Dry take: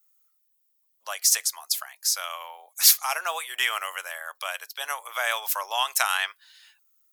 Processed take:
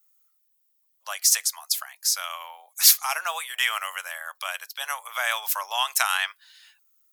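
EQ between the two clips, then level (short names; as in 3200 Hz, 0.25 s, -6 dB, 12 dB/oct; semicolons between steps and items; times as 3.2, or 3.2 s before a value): HPF 690 Hz 12 dB/oct; +1.0 dB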